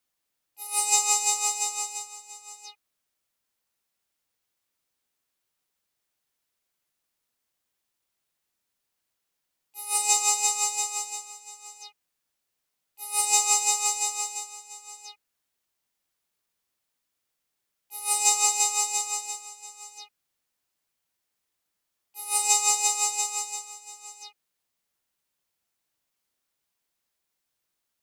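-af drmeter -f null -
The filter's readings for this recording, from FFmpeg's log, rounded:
Channel 1: DR: 18.8
Overall DR: 18.8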